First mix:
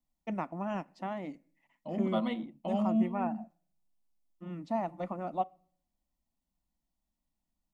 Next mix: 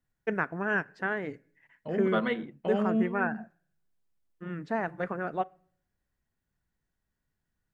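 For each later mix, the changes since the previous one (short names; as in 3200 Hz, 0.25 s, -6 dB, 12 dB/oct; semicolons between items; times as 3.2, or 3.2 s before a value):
master: remove fixed phaser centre 430 Hz, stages 6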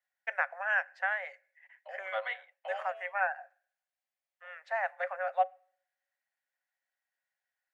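first voice +4.5 dB; master: add rippled Chebyshev high-pass 530 Hz, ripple 9 dB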